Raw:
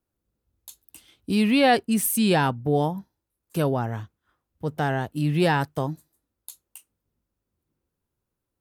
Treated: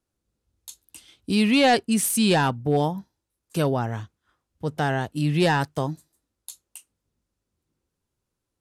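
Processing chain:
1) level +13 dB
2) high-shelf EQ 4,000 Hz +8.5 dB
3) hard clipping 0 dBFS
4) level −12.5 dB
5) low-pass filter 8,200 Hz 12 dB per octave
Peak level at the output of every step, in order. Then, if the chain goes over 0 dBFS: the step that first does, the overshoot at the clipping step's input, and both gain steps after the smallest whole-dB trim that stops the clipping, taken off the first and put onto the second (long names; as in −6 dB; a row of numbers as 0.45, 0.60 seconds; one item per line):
+4.5, +7.5, 0.0, −12.5, −12.0 dBFS
step 1, 7.5 dB
step 1 +5 dB, step 4 −4.5 dB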